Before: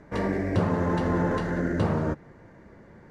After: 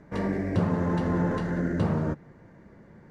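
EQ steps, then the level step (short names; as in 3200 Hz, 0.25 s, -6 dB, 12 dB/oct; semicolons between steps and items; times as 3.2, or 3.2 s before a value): bell 170 Hz +5 dB 1.2 oct; -3.5 dB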